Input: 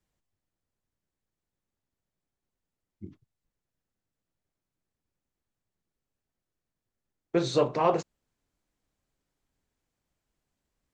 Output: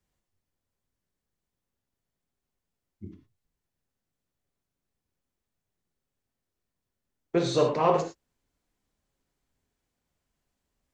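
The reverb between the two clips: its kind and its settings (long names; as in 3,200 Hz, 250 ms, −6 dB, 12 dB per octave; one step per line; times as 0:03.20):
reverb whose tail is shaped and stops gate 130 ms flat, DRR 4 dB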